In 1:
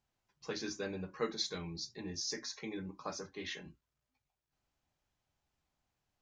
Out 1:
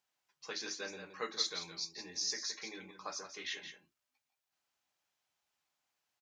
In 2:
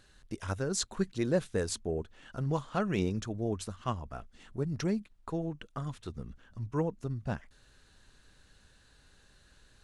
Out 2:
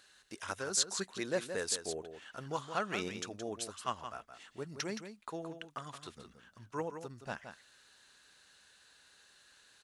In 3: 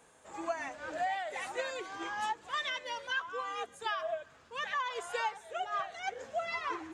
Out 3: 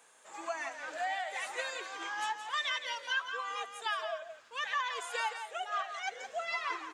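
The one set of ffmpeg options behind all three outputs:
-filter_complex "[0:a]highpass=f=1.2k:p=1,asplit=2[a][b];[b]aecho=0:1:170:0.355[c];[a][c]amix=inputs=2:normalize=0,volume=3dB"

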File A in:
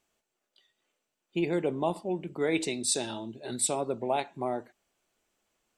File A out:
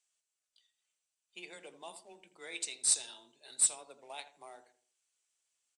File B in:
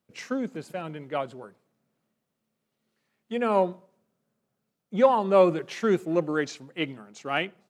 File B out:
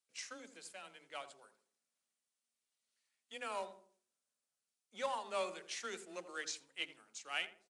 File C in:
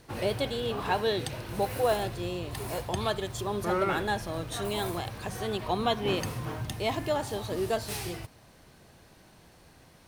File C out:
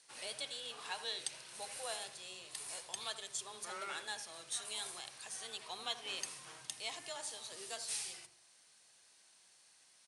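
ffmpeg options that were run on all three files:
-filter_complex "[0:a]aderivative,bandreject=f=50:t=h:w=6,bandreject=f=100:t=h:w=6,bandreject=f=150:t=h:w=6,bandreject=f=200:t=h:w=6,bandreject=f=250:t=h:w=6,bandreject=f=300:t=h:w=6,bandreject=f=350:t=h:w=6,bandreject=f=400:t=h:w=6,acontrast=73,afreqshift=14,acrusher=bits=4:mode=log:mix=0:aa=0.000001,asplit=2[a][b];[b]adelay=82,lowpass=f=1k:p=1,volume=-10dB,asplit=2[c][d];[d]adelay=82,lowpass=f=1k:p=1,volume=0.39,asplit=2[e][f];[f]adelay=82,lowpass=f=1k:p=1,volume=0.39,asplit=2[g][h];[h]adelay=82,lowpass=f=1k:p=1,volume=0.39[i];[a][c][e][g][i]amix=inputs=5:normalize=0,aresample=22050,aresample=44100,volume=-6dB"

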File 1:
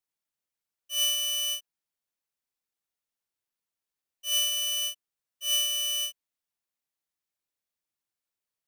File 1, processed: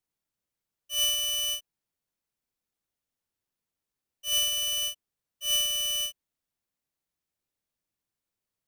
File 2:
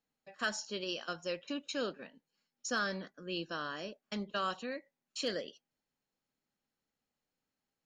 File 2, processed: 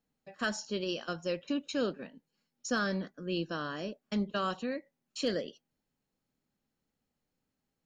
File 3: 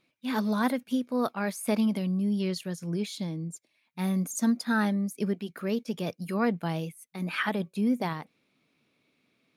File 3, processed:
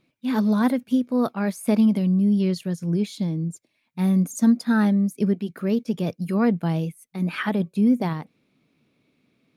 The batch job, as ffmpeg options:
-af "lowshelf=f=430:g=10"

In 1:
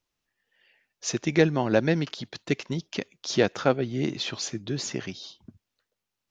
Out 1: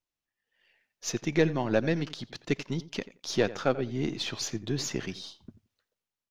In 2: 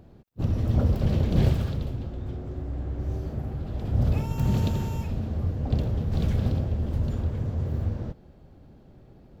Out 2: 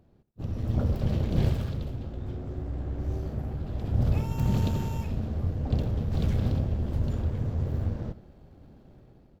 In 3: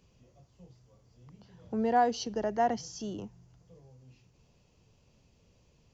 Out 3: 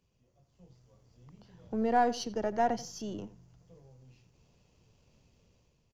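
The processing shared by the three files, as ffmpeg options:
-filter_complex "[0:a]aeval=exprs='if(lt(val(0),0),0.708*val(0),val(0))':c=same,asplit=2[a][b];[b]adelay=87,lowpass=f=2.7k:p=1,volume=-16dB,asplit=2[c][d];[d]adelay=87,lowpass=f=2.7k:p=1,volume=0.17[e];[a][c][e]amix=inputs=3:normalize=0,dynaudnorm=f=110:g=11:m=9.5dB,volume=-9dB"

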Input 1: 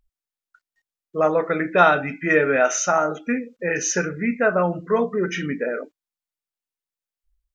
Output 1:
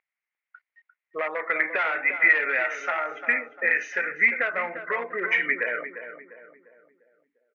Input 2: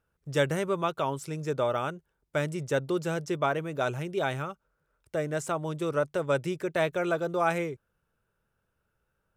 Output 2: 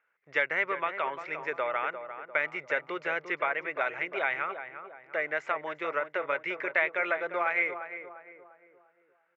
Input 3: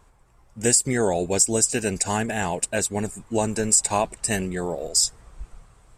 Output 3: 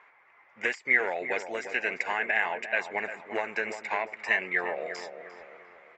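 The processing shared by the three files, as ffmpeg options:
-filter_complex "[0:a]aresample=16000,asoftclip=type=hard:threshold=-15dB,aresample=44100,highpass=630,acompressor=threshold=-30dB:ratio=6,lowpass=f=2.1k:t=q:w=6.5,asplit=2[a][b];[b]adelay=349,lowpass=f=1.4k:p=1,volume=-8.5dB,asplit=2[c][d];[d]adelay=349,lowpass=f=1.4k:p=1,volume=0.47,asplit=2[e][f];[f]adelay=349,lowpass=f=1.4k:p=1,volume=0.47,asplit=2[g][h];[h]adelay=349,lowpass=f=1.4k:p=1,volume=0.47,asplit=2[i][j];[j]adelay=349,lowpass=f=1.4k:p=1,volume=0.47[k];[a][c][e][g][i][k]amix=inputs=6:normalize=0,volume=1.5dB"

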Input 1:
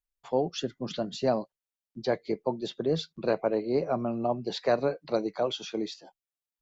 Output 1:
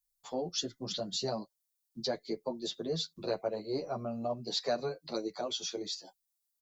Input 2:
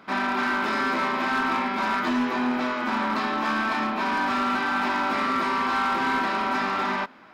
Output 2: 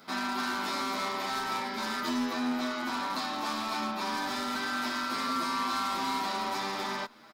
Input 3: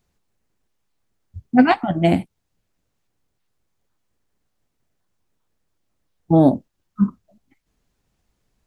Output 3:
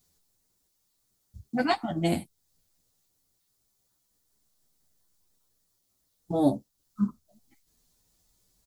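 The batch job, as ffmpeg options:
-filter_complex "[0:a]asplit=2[a][b];[b]acompressor=threshold=-34dB:ratio=6,volume=0dB[c];[a][c]amix=inputs=2:normalize=0,aexciter=amount=4.6:drive=3.5:freq=3.7k,bandreject=f=1.6k:w=29,asplit=2[d][e];[e]adelay=9.1,afreqshift=0.38[f];[d][f]amix=inputs=2:normalize=1,volume=-7dB"

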